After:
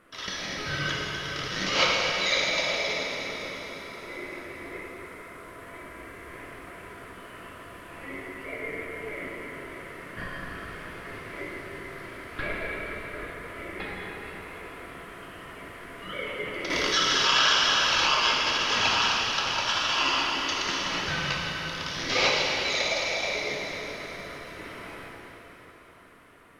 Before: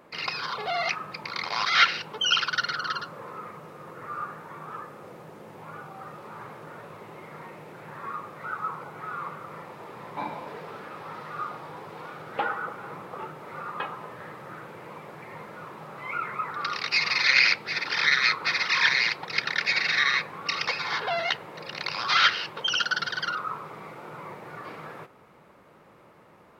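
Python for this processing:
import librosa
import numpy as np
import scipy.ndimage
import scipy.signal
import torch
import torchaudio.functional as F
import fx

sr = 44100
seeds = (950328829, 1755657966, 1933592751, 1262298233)

y = fx.peak_eq(x, sr, hz=10000.0, db=12.0, octaves=0.6)
y = y * np.sin(2.0 * np.pi * 840.0 * np.arange(len(y)) / sr)
y = fx.rev_plate(y, sr, seeds[0], rt60_s=4.3, hf_ratio=0.9, predelay_ms=0, drr_db=-4.0)
y = fx.env_flatten(y, sr, amount_pct=50, at=(16.7, 18.07))
y = y * librosa.db_to_amplitude(-3.0)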